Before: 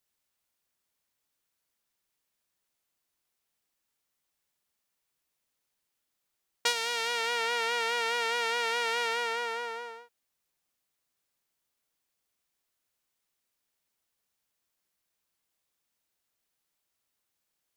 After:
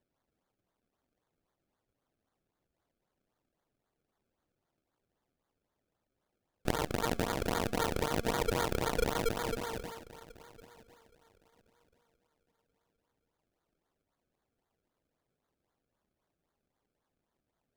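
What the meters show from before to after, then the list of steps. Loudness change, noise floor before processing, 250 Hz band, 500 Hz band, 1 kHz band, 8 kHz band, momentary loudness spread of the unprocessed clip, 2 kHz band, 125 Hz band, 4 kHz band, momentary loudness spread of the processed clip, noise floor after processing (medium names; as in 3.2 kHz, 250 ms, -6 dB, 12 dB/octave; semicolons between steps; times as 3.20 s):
-4.5 dB, -82 dBFS, +20.5 dB, +0.5 dB, -4.5 dB, -3.5 dB, 7 LU, -9.5 dB, no reading, -9.5 dB, 11 LU, under -85 dBFS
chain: filtered feedback delay 1084 ms, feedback 22%, low-pass 3.4 kHz, level -19 dB; decimation with a swept rate 32×, swing 100% 3.8 Hz; trim -2.5 dB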